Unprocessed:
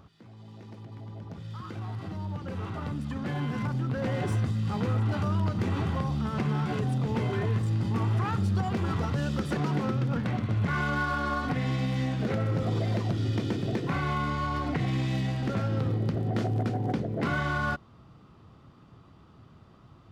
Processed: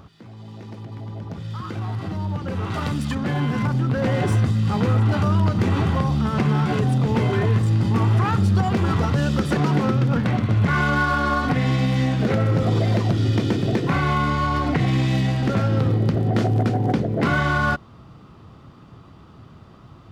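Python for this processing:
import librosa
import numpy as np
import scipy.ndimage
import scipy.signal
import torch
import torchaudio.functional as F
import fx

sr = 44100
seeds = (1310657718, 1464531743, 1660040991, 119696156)

y = fx.high_shelf(x, sr, hz=2000.0, db=10.0, at=(2.7, 3.15))
y = y * librosa.db_to_amplitude(8.5)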